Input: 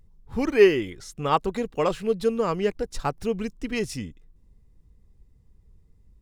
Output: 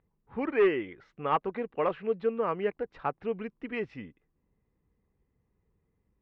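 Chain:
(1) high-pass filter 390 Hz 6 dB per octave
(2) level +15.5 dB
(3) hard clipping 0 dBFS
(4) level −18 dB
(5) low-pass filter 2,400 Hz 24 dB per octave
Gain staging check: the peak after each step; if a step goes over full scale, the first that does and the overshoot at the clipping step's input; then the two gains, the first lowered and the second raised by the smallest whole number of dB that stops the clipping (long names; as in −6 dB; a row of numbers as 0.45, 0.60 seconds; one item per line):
−8.0, +7.5, 0.0, −18.0, −16.5 dBFS
step 2, 7.5 dB
step 2 +7.5 dB, step 4 −10 dB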